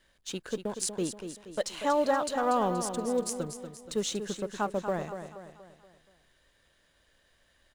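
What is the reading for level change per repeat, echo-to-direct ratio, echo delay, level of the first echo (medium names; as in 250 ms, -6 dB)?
-6.5 dB, -8.0 dB, 238 ms, -9.0 dB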